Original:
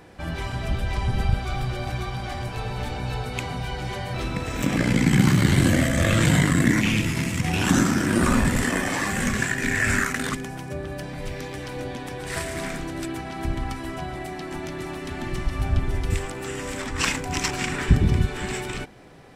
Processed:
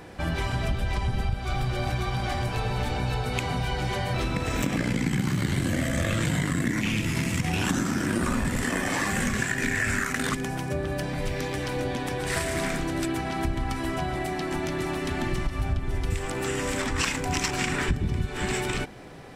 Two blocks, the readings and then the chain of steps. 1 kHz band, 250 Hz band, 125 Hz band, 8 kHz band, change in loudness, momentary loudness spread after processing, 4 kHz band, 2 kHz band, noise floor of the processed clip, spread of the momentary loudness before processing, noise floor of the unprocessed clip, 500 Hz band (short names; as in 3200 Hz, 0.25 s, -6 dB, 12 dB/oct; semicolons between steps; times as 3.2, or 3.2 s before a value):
-0.5 dB, -4.0 dB, -4.0 dB, -2.5 dB, -3.0 dB, 4 LU, -2.0 dB, -2.5 dB, -33 dBFS, 14 LU, -35 dBFS, -0.5 dB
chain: compressor, threshold -27 dBFS, peak gain reduction 15.5 dB; gain +4 dB